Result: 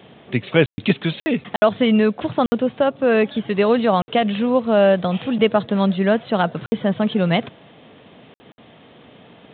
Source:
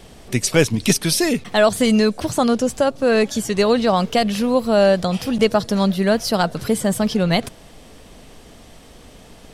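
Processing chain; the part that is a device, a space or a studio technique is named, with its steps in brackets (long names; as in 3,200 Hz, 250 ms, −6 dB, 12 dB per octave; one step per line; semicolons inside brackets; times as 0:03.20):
call with lost packets (high-pass filter 110 Hz 24 dB per octave; downsampling to 8,000 Hz; dropped packets of 60 ms)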